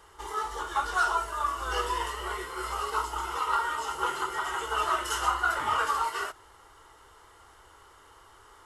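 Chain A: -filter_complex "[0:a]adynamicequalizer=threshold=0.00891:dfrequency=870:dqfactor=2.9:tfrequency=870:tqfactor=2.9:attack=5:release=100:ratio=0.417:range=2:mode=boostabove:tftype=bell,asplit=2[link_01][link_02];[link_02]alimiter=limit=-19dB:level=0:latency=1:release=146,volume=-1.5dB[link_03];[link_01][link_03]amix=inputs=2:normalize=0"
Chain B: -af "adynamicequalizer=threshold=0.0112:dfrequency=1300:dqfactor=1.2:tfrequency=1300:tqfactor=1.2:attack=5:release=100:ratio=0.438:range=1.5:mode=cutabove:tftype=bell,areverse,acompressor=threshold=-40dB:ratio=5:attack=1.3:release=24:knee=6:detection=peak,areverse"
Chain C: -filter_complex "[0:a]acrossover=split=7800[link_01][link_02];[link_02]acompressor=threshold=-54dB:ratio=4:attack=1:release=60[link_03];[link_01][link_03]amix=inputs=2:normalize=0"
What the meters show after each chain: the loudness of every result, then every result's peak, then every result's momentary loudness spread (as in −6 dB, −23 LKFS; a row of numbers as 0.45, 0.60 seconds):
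−24.0, −41.5, −29.5 LKFS; −8.5, −31.0, −13.0 dBFS; 6, 14, 8 LU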